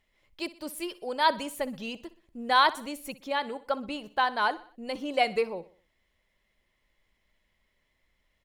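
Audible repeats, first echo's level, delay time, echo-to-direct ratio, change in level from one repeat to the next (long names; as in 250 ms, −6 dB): 3, −18.0 dB, 62 ms, −17.0 dB, −6.5 dB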